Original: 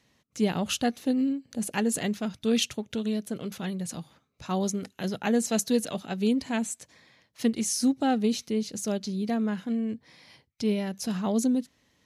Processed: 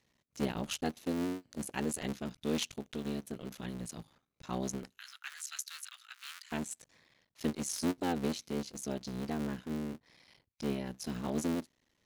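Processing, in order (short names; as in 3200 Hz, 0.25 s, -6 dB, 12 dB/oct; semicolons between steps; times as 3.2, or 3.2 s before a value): cycle switcher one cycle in 3, muted; 4.98–6.52 elliptic high-pass 1300 Hz, stop band 80 dB; gain -7 dB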